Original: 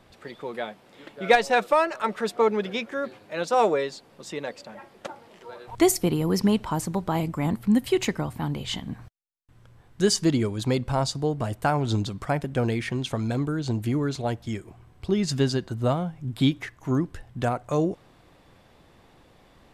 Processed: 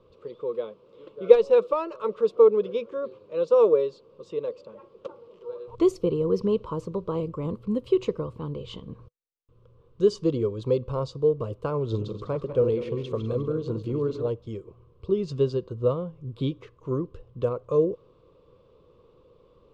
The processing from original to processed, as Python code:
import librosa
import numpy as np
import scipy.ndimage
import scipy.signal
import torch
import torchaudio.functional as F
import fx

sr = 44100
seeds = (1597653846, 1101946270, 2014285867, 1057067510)

y = fx.reverse_delay_fb(x, sr, ms=100, feedback_pct=55, wet_db=-8.0, at=(11.83, 14.29))
y = fx.curve_eq(y, sr, hz=(140.0, 270.0, 490.0, 750.0, 1100.0, 1800.0, 2700.0, 4200.0, 7000.0, 12000.0), db=(0, -5, 13, -16, 4, -21, -6, -9, -17, -29))
y = y * librosa.db_to_amplitude(-4.0)